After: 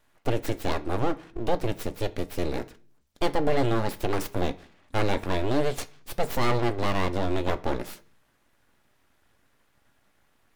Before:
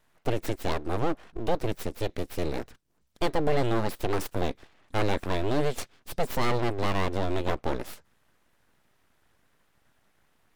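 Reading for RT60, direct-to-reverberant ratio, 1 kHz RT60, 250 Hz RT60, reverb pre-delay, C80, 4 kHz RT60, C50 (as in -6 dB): 0.45 s, 10.0 dB, 0.35 s, 0.60 s, 3 ms, 24.5 dB, 0.50 s, 20.0 dB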